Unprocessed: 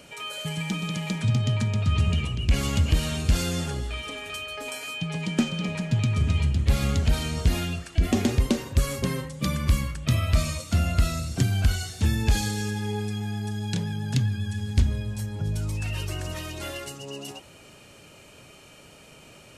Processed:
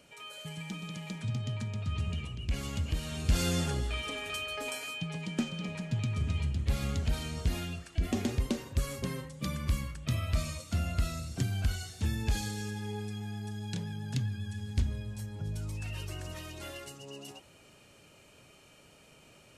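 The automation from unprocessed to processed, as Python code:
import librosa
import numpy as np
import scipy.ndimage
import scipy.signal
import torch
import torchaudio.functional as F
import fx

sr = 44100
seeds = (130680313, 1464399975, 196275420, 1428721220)

y = fx.gain(x, sr, db=fx.line((3.04, -11.0), (3.47, -2.0), (4.64, -2.0), (5.23, -8.5)))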